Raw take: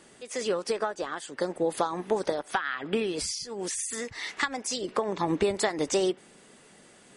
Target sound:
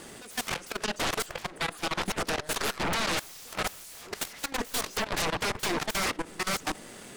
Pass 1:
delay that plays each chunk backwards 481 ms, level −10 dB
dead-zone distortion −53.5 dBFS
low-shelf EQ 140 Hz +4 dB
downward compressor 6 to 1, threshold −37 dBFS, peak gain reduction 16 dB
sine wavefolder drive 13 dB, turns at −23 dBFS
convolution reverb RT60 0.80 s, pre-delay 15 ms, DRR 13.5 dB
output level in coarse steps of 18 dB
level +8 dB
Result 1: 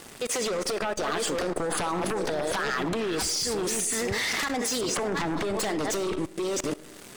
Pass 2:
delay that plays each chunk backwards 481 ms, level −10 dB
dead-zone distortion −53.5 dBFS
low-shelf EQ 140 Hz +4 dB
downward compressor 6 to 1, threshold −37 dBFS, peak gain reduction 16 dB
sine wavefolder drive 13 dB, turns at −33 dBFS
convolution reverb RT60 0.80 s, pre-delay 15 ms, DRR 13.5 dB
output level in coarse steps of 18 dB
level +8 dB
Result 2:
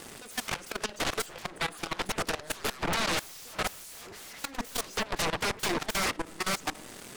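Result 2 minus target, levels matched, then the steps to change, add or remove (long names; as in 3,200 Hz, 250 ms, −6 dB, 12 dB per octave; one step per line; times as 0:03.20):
dead-zone distortion: distortion +7 dB
change: dead-zone distortion −60.5 dBFS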